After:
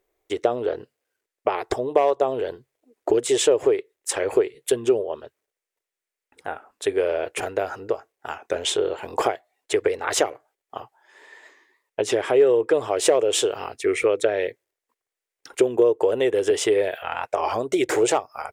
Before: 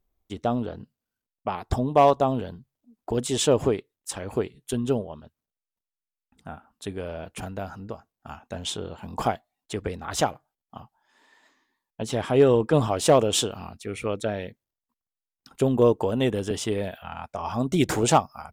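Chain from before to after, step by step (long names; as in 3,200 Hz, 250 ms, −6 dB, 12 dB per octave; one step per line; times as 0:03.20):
graphic EQ with 10 bands 125 Hz +12 dB, 250 Hz −4 dB, 500 Hz +6 dB, 2,000 Hz +10 dB, 8,000 Hz +5 dB
downward compressor 6 to 1, threshold −23 dBFS, peak gain reduction 14.5 dB
low shelf with overshoot 250 Hz −14 dB, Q 3
wow of a warped record 33 1/3 rpm, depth 100 cents
level +3.5 dB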